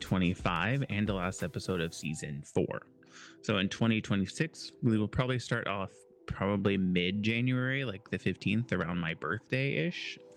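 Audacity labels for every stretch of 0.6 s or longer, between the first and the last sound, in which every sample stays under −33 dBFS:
2.780000	3.490000	silence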